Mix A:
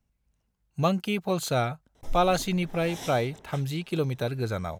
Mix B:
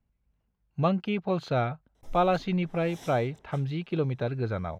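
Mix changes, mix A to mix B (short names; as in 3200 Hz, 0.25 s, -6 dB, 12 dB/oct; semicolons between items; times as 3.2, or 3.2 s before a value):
speech: add air absorption 280 m; background -8.5 dB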